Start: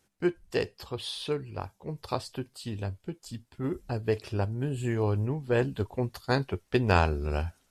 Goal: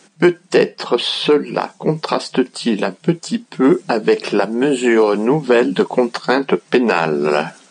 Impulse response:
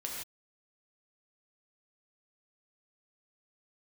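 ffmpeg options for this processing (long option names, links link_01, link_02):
-filter_complex "[0:a]acrossover=split=300|3000[link_01][link_02][link_03];[link_01]acompressor=threshold=-35dB:ratio=4[link_04];[link_02]acompressor=threshold=-32dB:ratio=4[link_05];[link_03]acompressor=threshold=-54dB:ratio=4[link_06];[link_04][link_05][link_06]amix=inputs=3:normalize=0,apsyclip=28dB,afftfilt=real='re*between(b*sr/4096,160,9500)':imag='im*between(b*sr/4096,160,9500)':win_size=4096:overlap=0.75,volume=-4.5dB"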